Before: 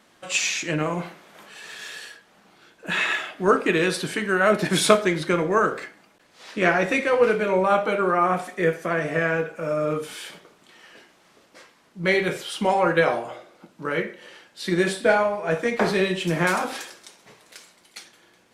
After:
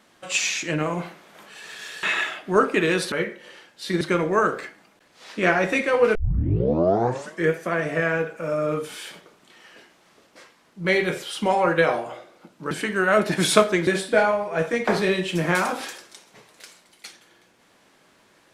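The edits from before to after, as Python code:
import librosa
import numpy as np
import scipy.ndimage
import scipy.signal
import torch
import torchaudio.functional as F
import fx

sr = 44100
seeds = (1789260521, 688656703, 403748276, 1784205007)

y = fx.edit(x, sr, fx.cut(start_s=2.03, length_s=0.92),
    fx.swap(start_s=4.04, length_s=1.16, other_s=13.9, other_length_s=0.89),
    fx.tape_start(start_s=7.34, length_s=1.37), tone=tone)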